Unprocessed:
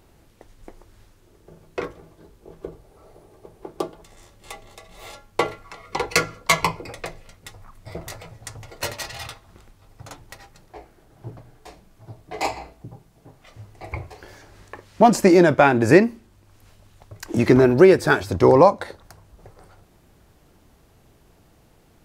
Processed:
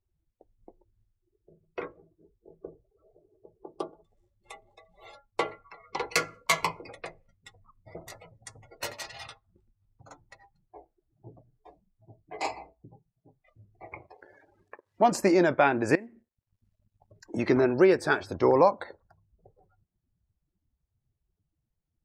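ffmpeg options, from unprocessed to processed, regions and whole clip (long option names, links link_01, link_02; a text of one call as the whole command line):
ffmpeg -i in.wav -filter_complex "[0:a]asettb=1/sr,asplit=3[link_01][link_02][link_03];[link_01]atrim=end=13.864[link_04];[link_02]atrim=start=13.86:end=15.12,asetpts=PTS-STARTPTS,afade=type=in:duration=0.004:curve=qsin,afade=type=out:start_time=1.256:duration=0.004:curve=qsin,lowshelf=frequency=110:gain=-11.5,acompressor=mode=upward:threshold=-30dB:ratio=2.5:attack=3.2:release=140:knee=2.83:detection=peak,aeval=exprs='sgn(val(0))*max(abs(val(0))-0.00596,0)':channel_layout=same[link_05];[link_03]atrim=start=15.116[link_06];[link_04][link_05]acrossfade=duration=0.004:curve1=hsin:curve2=qsin[link_07];[link_07][link_06]acrossfade=duration=0.004:curve1=qsin:curve2=hsin,asettb=1/sr,asplit=3[link_08][link_09][link_10];[link_08]atrim=end=15.954[link_11];[link_09]atrim=start=15.95:end=17.33,asetpts=PTS-STARTPTS,afade=type=in:duration=0.004:curve=qsin,afade=type=out:start_time=1.376:duration=0.004:curve=qsin,acompressor=threshold=-38dB:ratio=2.5:attack=3.2:release=140:knee=1:detection=peak,acrusher=bits=7:mix=0:aa=0.5[link_12];[link_10]atrim=start=17.326[link_13];[link_11][link_12]acrossfade=duration=0.004:curve1=hsin:curve2=qsin[link_14];[link_14][link_13]acrossfade=duration=0.004:curve1=qsin:curve2=hsin,afftdn=noise_reduction=31:noise_floor=-41,lowshelf=frequency=150:gain=-11.5,volume=-6.5dB" out.wav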